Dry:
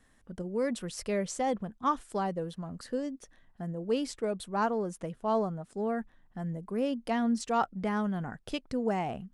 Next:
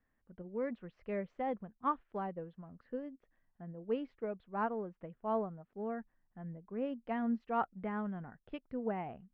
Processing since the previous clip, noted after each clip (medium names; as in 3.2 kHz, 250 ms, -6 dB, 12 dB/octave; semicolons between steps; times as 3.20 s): low-pass 2.5 kHz 24 dB/octave; upward expansion 1.5:1, over -44 dBFS; trim -4.5 dB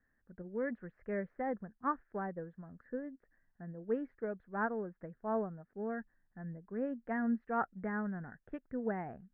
FFT filter 400 Hz 0 dB, 1.1 kHz -4 dB, 1.7 kHz +8 dB, 2.9 kHz -19 dB; trim +1 dB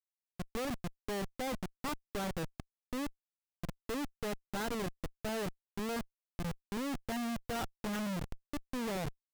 echo from a far wall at 120 m, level -24 dB; Schmitt trigger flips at -40 dBFS; trim +4 dB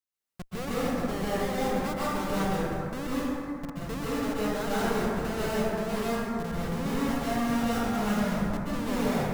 plate-style reverb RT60 2.9 s, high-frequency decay 0.35×, pre-delay 115 ms, DRR -9 dB